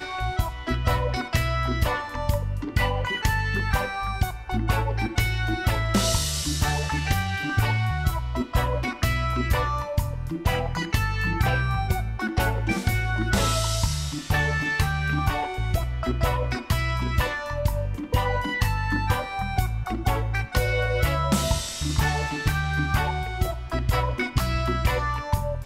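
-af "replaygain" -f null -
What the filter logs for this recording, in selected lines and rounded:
track_gain = +8.9 dB
track_peak = 0.235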